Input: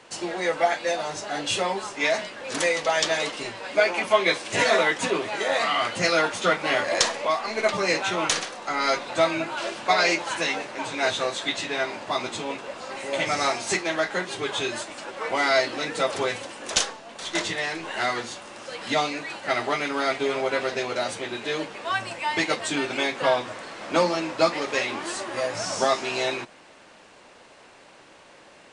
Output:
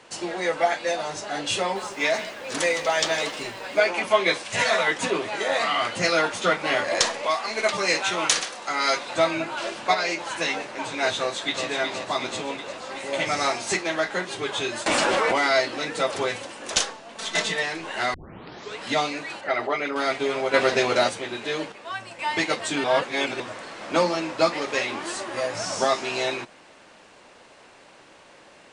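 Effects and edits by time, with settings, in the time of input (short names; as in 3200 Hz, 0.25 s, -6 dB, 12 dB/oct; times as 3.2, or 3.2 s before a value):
1.6–3.79 lo-fi delay 0.156 s, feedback 35%, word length 7-bit, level -14.5 dB
4.43–4.88 bell 340 Hz -13.5 dB 0.75 oct
7.23–9.15 tilt +1.5 dB/oct
9.94–10.41 compressor 1.5:1, threshold -30 dBFS
11.17–11.67 echo throw 0.37 s, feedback 65%, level -6 dB
14.86–15.47 fast leveller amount 100%
17.17–17.63 comb 4.5 ms, depth 88%
18.14 tape start 0.68 s
19.41–19.96 formant sharpening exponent 1.5
20.54–21.09 gain +6.5 dB
21.72–22.19 gain -6.5 dB
22.84–23.4 reverse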